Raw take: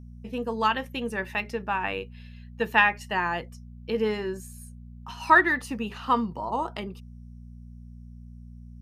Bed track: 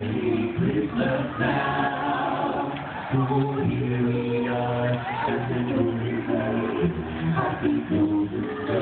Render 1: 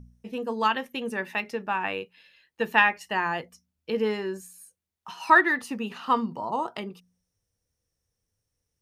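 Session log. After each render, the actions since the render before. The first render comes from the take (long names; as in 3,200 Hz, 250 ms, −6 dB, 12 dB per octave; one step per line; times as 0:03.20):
hum removal 60 Hz, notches 4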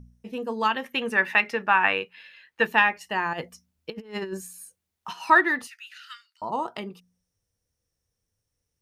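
0:00.84–0:02.67: parametric band 1,700 Hz +11 dB 2.2 octaves
0:03.33–0:05.13: compressor whose output falls as the input rises −33 dBFS, ratio −0.5
0:05.67–0:06.42: Chebyshev high-pass with heavy ripple 1,400 Hz, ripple 3 dB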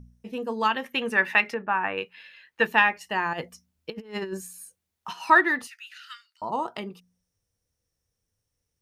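0:01.54–0:01.98: head-to-tape spacing loss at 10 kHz 45 dB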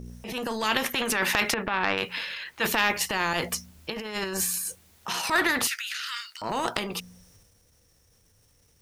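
transient designer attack −8 dB, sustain +7 dB
every bin compressed towards the loudest bin 2 to 1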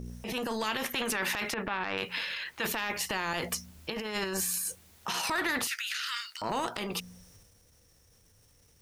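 downward compressor 1.5 to 1, threshold −32 dBFS, peak gain reduction 5.5 dB
brickwall limiter −20.5 dBFS, peak gain reduction 8 dB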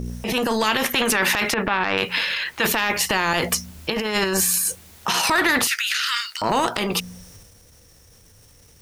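level +11.5 dB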